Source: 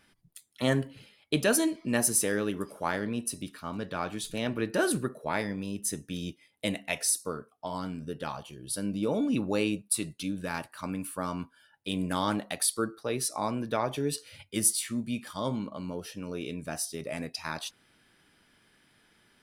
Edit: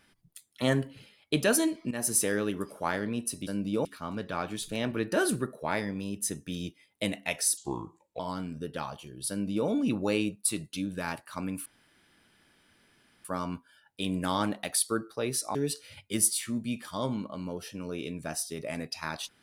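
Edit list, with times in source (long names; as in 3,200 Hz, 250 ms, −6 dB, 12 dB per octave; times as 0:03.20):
0:01.91–0:02.16: fade in, from −14.5 dB
0:07.19–0:07.66: play speed 75%
0:08.76–0:09.14: duplicate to 0:03.47
0:11.12: splice in room tone 1.59 s
0:13.42–0:13.97: remove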